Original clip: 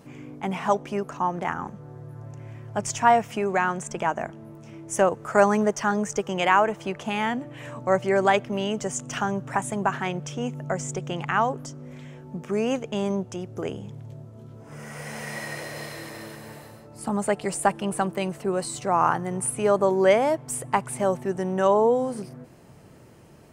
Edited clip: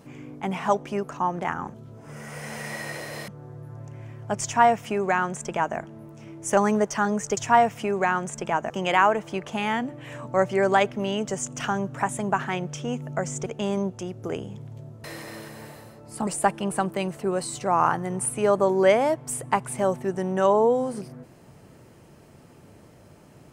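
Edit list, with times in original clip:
2.90–4.23 s: copy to 6.23 s
5.03–5.43 s: delete
10.99–12.79 s: delete
14.37–15.91 s: move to 1.74 s
17.14–17.48 s: delete

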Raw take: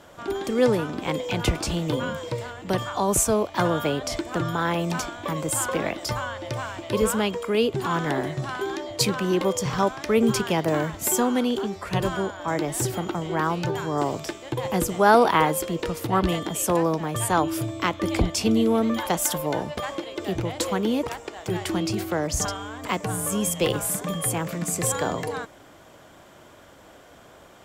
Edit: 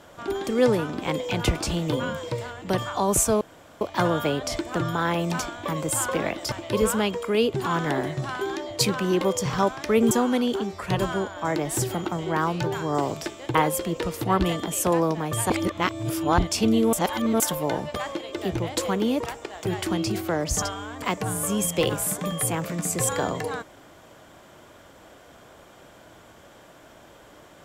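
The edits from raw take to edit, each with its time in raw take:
3.41 s: insert room tone 0.40 s
6.12–6.72 s: delete
10.31–11.14 s: delete
14.58–15.38 s: delete
17.33–18.21 s: reverse
18.76–19.23 s: reverse

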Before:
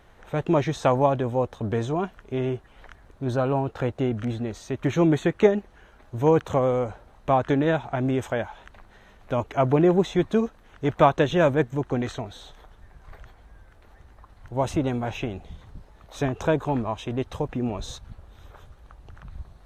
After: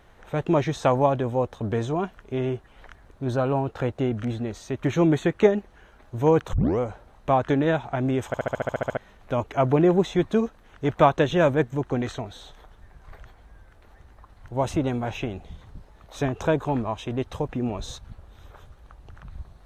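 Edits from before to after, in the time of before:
6.53 s: tape start 0.26 s
8.27 s: stutter in place 0.07 s, 10 plays

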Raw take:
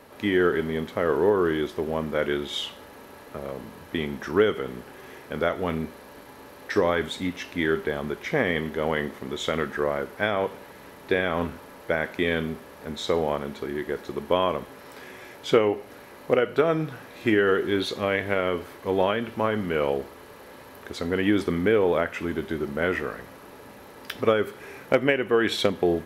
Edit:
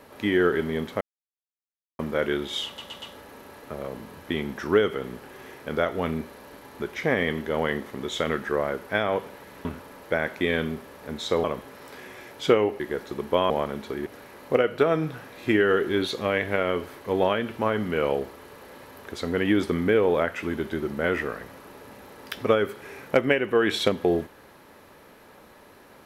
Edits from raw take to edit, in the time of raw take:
1.01–1.99 s: mute
2.66 s: stutter 0.12 s, 4 plays
6.44–8.08 s: delete
10.93–11.43 s: delete
13.22–13.78 s: swap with 14.48–15.84 s

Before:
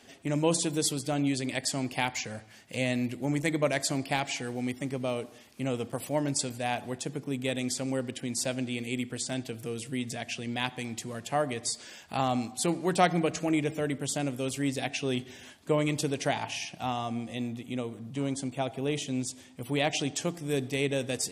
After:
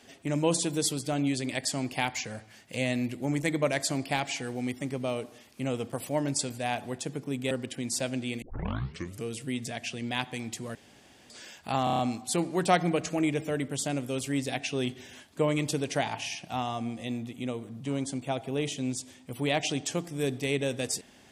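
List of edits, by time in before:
7.51–7.96 s: delete
8.87 s: tape start 0.83 s
11.20–11.75 s: room tone
12.29 s: stutter 0.03 s, 6 plays

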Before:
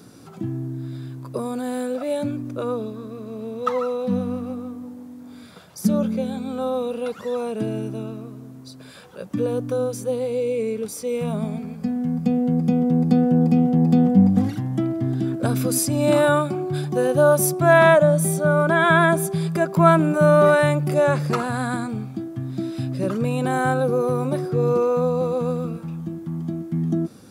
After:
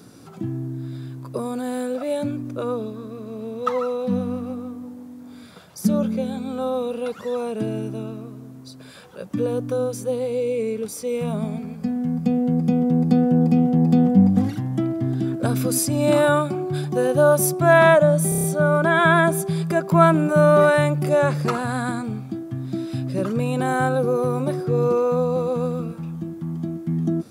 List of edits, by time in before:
18.29 s: stutter 0.03 s, 6 plays

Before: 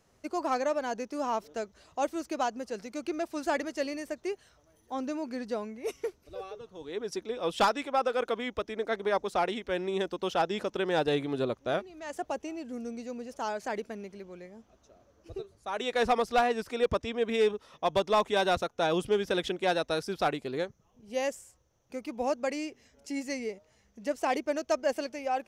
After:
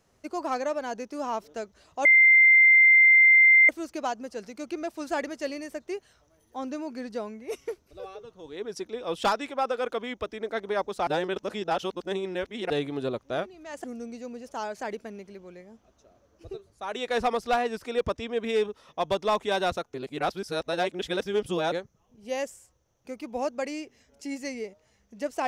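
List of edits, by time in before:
2.05 s: add tone 2.09 kHz -13 dBFS 1.64 s
9.43–11.06 s: reverse
12.20–12.69 s: delete
18.79–20.57 s: reverse

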